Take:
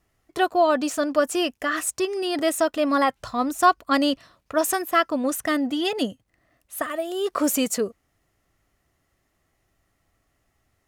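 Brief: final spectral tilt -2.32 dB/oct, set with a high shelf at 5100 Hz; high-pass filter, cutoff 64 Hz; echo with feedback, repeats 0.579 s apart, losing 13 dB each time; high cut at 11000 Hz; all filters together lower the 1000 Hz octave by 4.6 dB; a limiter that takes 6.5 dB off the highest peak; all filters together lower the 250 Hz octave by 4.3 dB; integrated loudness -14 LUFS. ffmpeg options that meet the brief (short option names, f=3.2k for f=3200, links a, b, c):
-af "highpass=64,lowpass=11k,equalizer=f=250:t=o:g=-5,equalizer=f=1k:t=o:g=-6.5,highshelf=f=5.1k:g=6,alimiter=limit=-15.5dB:level=0:latency=1,aecho=1:1:579|1158|1737:0.224|0.0493|0.0108,volume=13dB"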